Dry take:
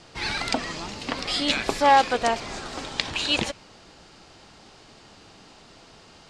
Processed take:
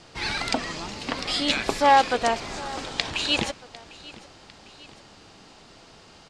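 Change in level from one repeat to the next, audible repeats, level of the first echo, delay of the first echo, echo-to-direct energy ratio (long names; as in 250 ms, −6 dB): −5.0 dB, 2, −20.0 dB, 751 ms, −19.0 dB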